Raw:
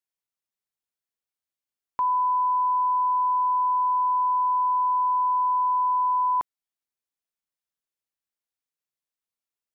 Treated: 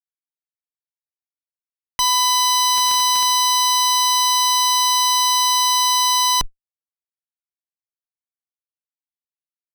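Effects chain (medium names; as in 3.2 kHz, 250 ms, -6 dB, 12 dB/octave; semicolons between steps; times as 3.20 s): resampled via 11.025 kHz; Chebyshev shaper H 2 -19 dB, 3 -7 dB, 4 -9 dB, 6 -24 dB, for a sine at -19.5 dBFS; 2.76–3.33 s: crackle 180 per s -> 51 per s -28 dBFS; fuzz box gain 49 dB, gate -55 dBFS; trim -3 dB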